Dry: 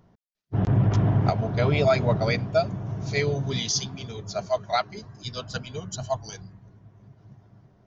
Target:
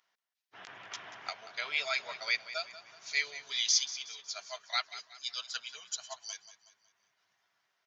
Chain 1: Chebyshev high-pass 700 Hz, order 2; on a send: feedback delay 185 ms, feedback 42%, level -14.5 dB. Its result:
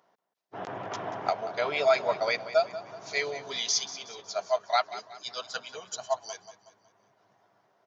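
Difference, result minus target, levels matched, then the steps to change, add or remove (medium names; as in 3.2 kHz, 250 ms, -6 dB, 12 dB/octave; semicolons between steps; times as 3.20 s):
500 Hz band +15.5 dB
change: Chebyshev high-pass 2.2 kHz, order 2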